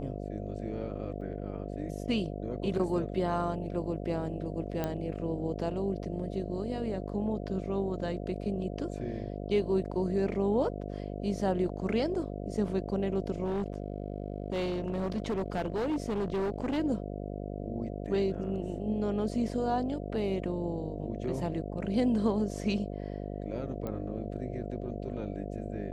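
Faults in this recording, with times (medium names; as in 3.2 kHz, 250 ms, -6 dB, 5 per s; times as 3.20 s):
buzz 50 Hz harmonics 14 -38 dBFS
1.21 s: dropout 4.4 ms
4.84 s: pop -18 dBFS
13.44–16.79 s: clipped -27.5 dBFS
23.87 s: pop -24 dBFS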